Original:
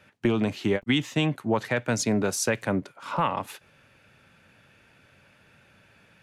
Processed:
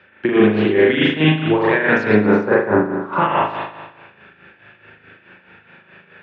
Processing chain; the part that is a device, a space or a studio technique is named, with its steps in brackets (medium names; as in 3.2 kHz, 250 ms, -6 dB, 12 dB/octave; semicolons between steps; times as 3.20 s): 2.17–3.13 s: resonant high shelf 1.7 kHz -13.5 dB, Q 1.5; combo amplifier with spring reverb and tremolo (spring tank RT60 1.2 s, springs 38 ms, chirp 75 ms, DRR -7 dB; tremolo 4.7 Hz, depth 65%; cabinet simulation 110–3600 Hz, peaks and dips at 130 Hz -7 dB, 250 Hz -5 dB, 370 Hz +6 dB, 620 Hz -4 dB, 1.7 kHz +6 dB); trim +6 dB